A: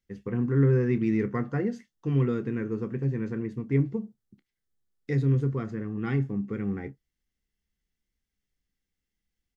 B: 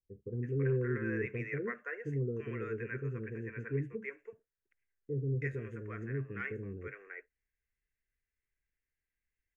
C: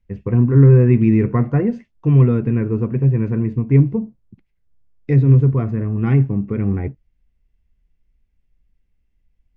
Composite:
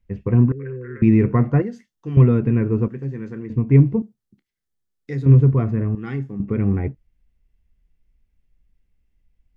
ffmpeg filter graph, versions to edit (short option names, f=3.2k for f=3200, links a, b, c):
-filter_complex "[0:a]asplit=4[a][b][c][d];[2:a]asplit=6[e][f][g][h][i][j];[e]atrim=end=0.522[k];[1:a]atrim=start=0.518:end=1.022[l];[f]atrim=start=1.018:end=1.622[m];[a]atrim=start=1.618:end=2.172[n];[g]atrim=start=2.168:end=2.882[o];[b]atrim=start=2.878:end=3.502[p];[h]atrim=start=3.498:end=4.022[q];[c]atrim=start=4.018:end=5.262[r];[i]atrim=start=5.258:end=5.952[s];[d]atrim=start=5.948:end=6.402[t];[j]atrim=start=6.398[u];[k][l]acrossfade=d=0.004:c1=hsin:c2=hsin[v];[v][m]acrossfade=d=0.004:c1=hsin:c2=hsin[w];[w][n]acrossfade=d=0.004:c1=hsin:c2=hsin[x];[x][o]acrossfade=d=0.004:c1=hsin:c2=hsin[y];[y][p]acrossfade=d=0.004:c1=hsin:c2=hsin[z];[z][q]acrossfade=d=0.004:c1=hsin:c2=hsin[aa];[aa][r]acrossfade=d=0.004:c1=hsin:c2=hsin[ab];[ab][s]acrossfade=d=0.004:c1=hsin:c2=hsin[ac];[ac][t]acrossfade=d=0.004:c1=hsin:c2=hsin[ad];[ad][u]acrossfade=d=0.004:c1=hsin:c2=hsin"